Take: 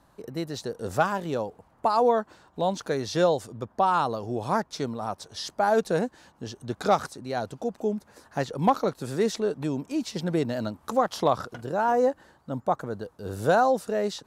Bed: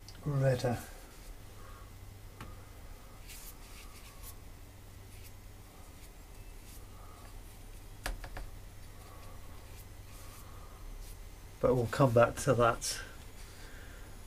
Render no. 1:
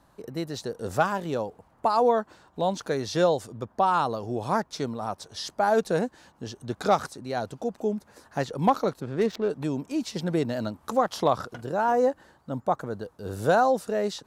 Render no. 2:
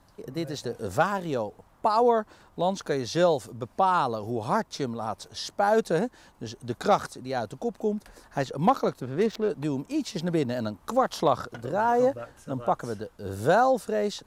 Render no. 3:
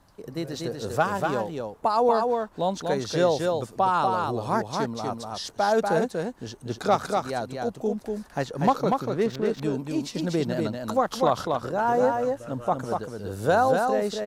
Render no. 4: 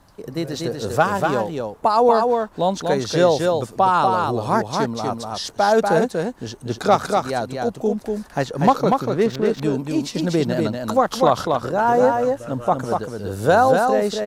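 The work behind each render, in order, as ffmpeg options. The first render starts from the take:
ffmpeg -i in.wav -filter_complex "[0:a]asplit=3[link_01][link_02][link_03];[link_01]afade=type=out:start_time=8.99:duration=0.02[link_04];[link_02]adynamicsmooth=sensitivity=5:basefreq=1300,afade=type=in:start_time=8.99:duration=0.02,afade=type=out:start_time=9.48:duration=0.02[link_05];[link_03]afade=type=in:start_time=9.48:duration=0.02[link_06];[link_04][link_05][link_06]amix=inputs=3:normalize=0" out.wav
ffmpeg -i in.wav -i bed.wav -filter_complex "[1:a]volume=-14.5dB[link_01];[0:a][link_01]amix=inputs=2:normalize=0" out.wav
ffmpeg -i in.wav -af "aecho=1:1:241:0.631" out.wav
ffmpeg -i in.wav -af "volume=6dB" out.wav

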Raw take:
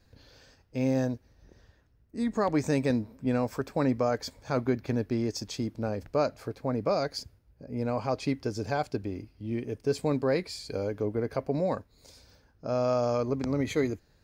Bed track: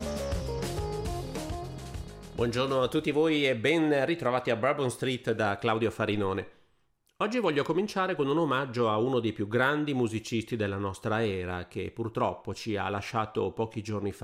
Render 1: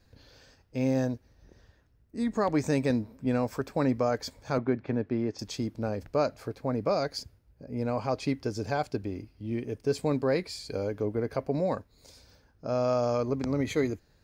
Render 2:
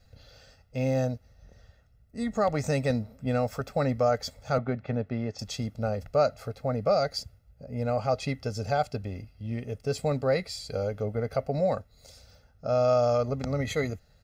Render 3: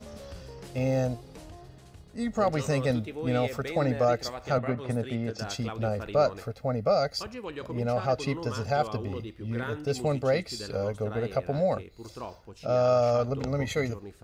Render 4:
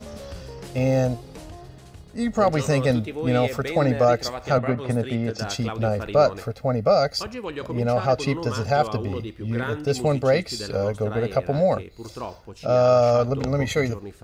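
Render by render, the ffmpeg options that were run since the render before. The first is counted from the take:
ffmpeg -i in.wav -filter_complex "[0:a]asettb=1/sr,asplit=3[link_01][link_02][link_03];[link_01]atrim=end=4.584[link_04];[link_02]atrim=start=4.58:end=5.39,asetpts=PTS-STARTPTS,afade=type=in:duration=0.004:curve=qsin,afade=type=out:start_time=0.806:duration=0.004:curve=qsin,highpass=110,lowpass=2500[link_05];[link_03]atrim=start=5.386[link_06];[link_04][link_05]acrossfade=duration=0.004:curve1=hsin:curve2=qsin[link_07];[link_07][link_06]acrossfade=duration=0.004:curve1=qsin:curve2=hsin" out.wav
ffmpeg -i in.wav -af "bandreject=frequency=1000:width=14,aecho=1:1:1.5:0.76" out.wav
ffmpeg -i in.wav -i bed.wav -filter_complex "[1:a]volume=-11dB[link_01];[0:a][link_01]amix=inputs=2:normalize=0" out.wav
ffmpeg -i in.wav -af "volume=6dB" out.wav

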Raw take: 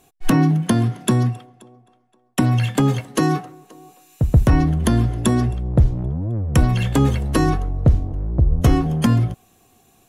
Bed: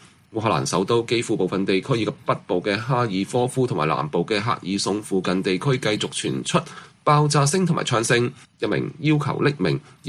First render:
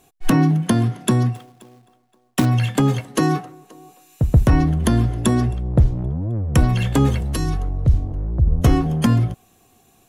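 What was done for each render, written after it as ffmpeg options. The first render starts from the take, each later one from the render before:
ffmpeg -i in.wav -filter_complex "[0:a]asplit=3[link_01][link_02][link_03];[link_01]afade=type=out:start_time=1.34:duration=0.02[link_04];[link_02]acrusher=bits=3:mode=log:mix=0:aa=0.000001,afade=type=in:start_time=1.34:duration=0.02,afade=type=out:start_time=2.44:duration=0.02[link_05];[link_03]afade=type=in:start_time=2.44:duration=0.02[link_06];[link_04][link_05][link_06]amix=inputs=3:normalize=0,asettb=1/sr,asplit=3[link_07][link_08][link_09];[link_07]atrim=end=7.214[link_10];[link_08]atrim=start=7.21:end=8.48,asetpts=PTS-STARTPTS,afade=type=in:duration=0.004:curve=qsin,afade=type=out:start_time=1.266:duration=0.004:curve=qsin,acrossover=split=150|3000[link_11][link_12][link_13];[link_12]acompressor=threshold=-31dB:ratio=2.5:attack=3.2:release=140:knee=2.83:detection=peak[link_14];[link_11][link_14][link_13]amix=inputs=3:normalize=0[link_15];[link_09]atrim=start=8.476[link_16];[link_10][link_15]acrossfade=duration=0.004:curve1=hsin:curve2=qsin[link_17];[link_17][link_16]acrossfade=duration=0.004:curve1=qsin:curve2=hsin" out.wav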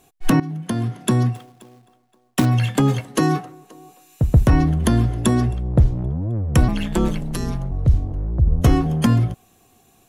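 ffmpeg -i in.wav -filter_complex "[0:a]asettb=1/sr,asplit=3[link_01][link_02][link_03];[link_01]atrim=end=6.684[link_04];[link_02]atrim=start=6.68:end=7.72,asetpts=PTS-STARTPTS,afade=type=in:duration=0.004:curve=qsin,afade=type=out:start_time=1.036:duration=0.004:curve=qsin,aeval=exprs='val(0)*sin(2*PI*87*n/s)':channel_layout=same[link_05];[link_03]atrim=start=7.716[link_06];[link_04][link_05]acrossfade=duration=0.004:curve1=hsin:curve2=qsin[link_07];[link_07][link_06]acrossfade=duration=0.004:curve1=qsin:curve2=hsin,asplit=2[link_08][link_09];[link_08]atrim=end=0.4,asetpts=PTS-STARTPTS,afade=type=out:start_time=0.396:duration=0.004:curve=hsin:silence=0.141254[link_10];[link_09]atrim=start=0.4,asetpts=PTS-STARTPTS,afade=type=in:duration=0.8:silence=0.141254[link_11];[link_10][link_11]concat=n=2:v=0:a=1" out.wav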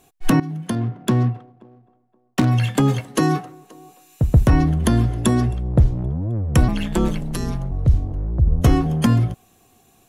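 ffmpeg -i in.wav -filter_complex "[0:a]asettb=1/sr,asplit=3[link_01][link_02][link_03];[link_01]atrim=end=0.754[link_04];[link_02]atrim=start=0.75:end=2.48,asetpts=PTS-STARTPTS,afade=type=in:duration=0.004:curve=qsin,afade=type=out:start_time=1.726:duration=0.004:curve=qsin,adynamicsmooth=sensitivity=3:basefreq=1000[link_05];[link_03]atrim=start=2.476[link_06];[link_04][link_05]acrossfade=duration=0.004:curve1=hsin:curve2=qsin[link_07];[link_07][link_06]acrossfade=duration=0.004:curve1=qsin:curve2=hsin" out.wav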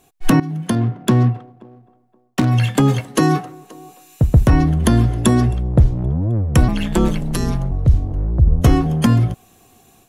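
ffmpeg -i in.wav -af "dynaudnorm=framelen=100:gausssize=3:maxgain=5dB" out.wav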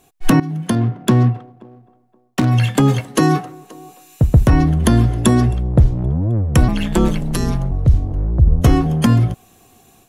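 ffmpeg -i in.wav -af "volume=1dB,alimiter=limit=-2dB:level=0:latency=1" out.wav

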